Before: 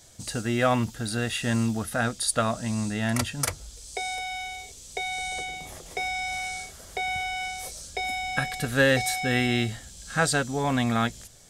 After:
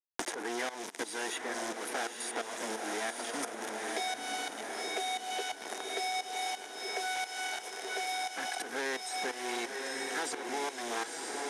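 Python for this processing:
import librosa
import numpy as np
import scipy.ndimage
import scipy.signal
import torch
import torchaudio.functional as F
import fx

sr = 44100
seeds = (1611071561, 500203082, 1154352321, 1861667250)

y = fx.spec_quant(x, sr, step_db=30)
y = fx.peak_eq(y, sr, hz=3000.0, db=-11.5, octaves=2.7)
y = fx.quant_companded(y, sr, bits=2)
y = fx.tremolo_shape(y, sr, shape='saw_up', hz=2.9, depth_pct=85)
y = fx.cabinet(y, sr, low_hz=370.0, low_slope=24, high_hz=9000.0, hz=(560.0, 1200.0, 2700.0, 4400.0, 7700.0), db=(-9, -7, -6, -8, -9))
y = fx.echo_diffused(y, sr, ms=945, feedback_pct=46, wet_db=-6.5)
y = fx.band_squash(y, sr, depth_pct=100)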